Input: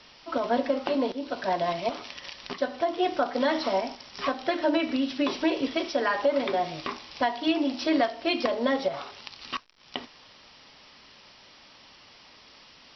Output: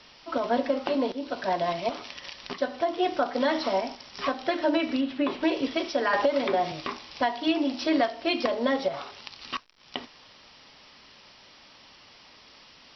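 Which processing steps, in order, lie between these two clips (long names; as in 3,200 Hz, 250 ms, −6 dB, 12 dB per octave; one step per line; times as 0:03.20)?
0:05.01–0:05.43: low-pass filter 2,700 Hz 12 dB per octave
0:06.13–0:06.72: multiband upward and downward compressor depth 100%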